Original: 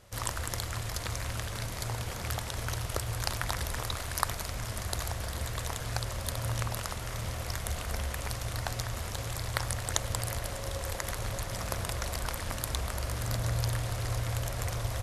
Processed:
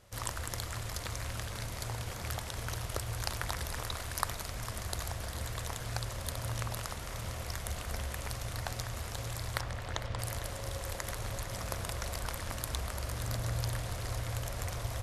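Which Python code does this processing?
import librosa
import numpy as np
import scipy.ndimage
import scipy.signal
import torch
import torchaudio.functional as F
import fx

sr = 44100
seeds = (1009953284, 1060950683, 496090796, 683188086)

y = fx.lowpass(x, sr, hz=3500.0, slope=12, at=(9.61, 10.19))
y = y + 10.0 ** (-13.0 / 20.0) * np.pad(y, (int(453 * sr / 1000.0), 0))[:len(y)]
y = y * 10.0 ** (-3.5 / 20.0)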